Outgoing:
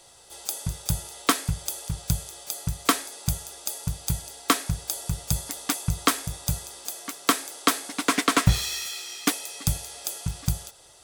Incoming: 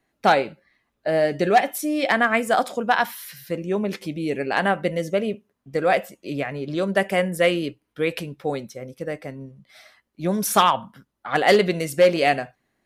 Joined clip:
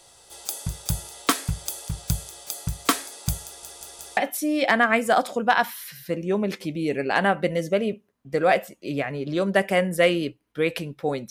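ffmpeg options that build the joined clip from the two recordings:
ffmpeg -i cue0.wav -i cue1.wav -filter_complex "[0:a]apad=whole_dur=11.3,atrim=end=11.3,asplit=4[link_01][link_02][link_03][link_04];[link_01]atrim=end=3.632[link_05];[link_02]atrim=start=3.448:end=3.632[link_06];[link_03]atrim=start=3.448:end=3.632[link_07];[link_04]atrim=start=3.448:end=3.632[link_08];[1:a]atrim=start=1.578:end=8.71[link_09];[link_05][link_06]acrossfade=duration=0.004:curve1=hsin:curve2=hsin[link_10];[link_10][link_07]acrossfade=duration=0.004:curve1=hsin:curve2=hsin[link_11];[link_11][link_08]acrossfade=duration=0.004:curve1=hsin:curve2=hsin[link_12];[link_12][link_09]acrossfade=duration=0.004:curve1=hsin:curve2=hsin" out.wav

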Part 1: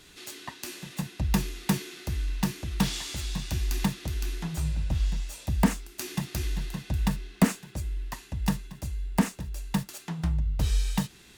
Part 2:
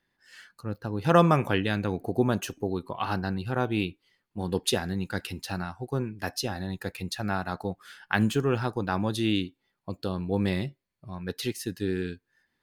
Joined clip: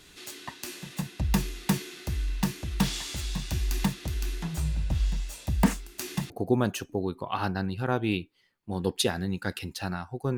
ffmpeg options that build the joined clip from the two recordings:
ffmpeg -i cue0.wav -i cue1.wav -filter_complex "[0:a]apad=whole_dur=10.37,atrim=end=10.37,atrim=end=6.302[link_01];[1:a]atrim=start=1.978:end=6.05[link_02];[link_01][link_02]acrossfade=duration=0.004:curve1=hsin:curve2=hsin" out.wav

